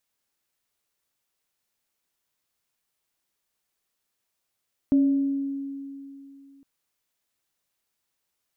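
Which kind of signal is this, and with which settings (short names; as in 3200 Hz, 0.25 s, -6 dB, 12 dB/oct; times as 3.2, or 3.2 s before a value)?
sine partials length 1.71 s, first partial 276 Hz, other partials 581 Hz, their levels -19.5 dB, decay 2.85 s, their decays 1.07 s, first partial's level -15 dB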